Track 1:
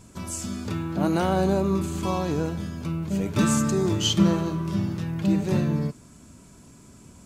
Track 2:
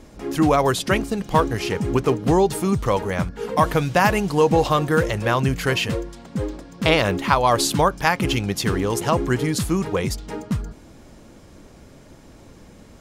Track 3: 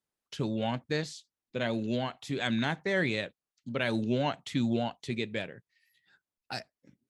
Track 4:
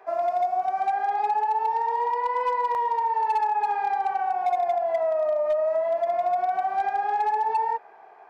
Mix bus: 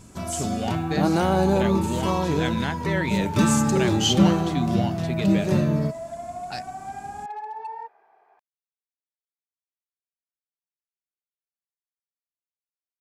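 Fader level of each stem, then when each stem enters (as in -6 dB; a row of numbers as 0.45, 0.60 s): +2.0 dB, off, +1.5 dB, -10.5 dB; 0.00 s, off, 0.00 s, 0.10 s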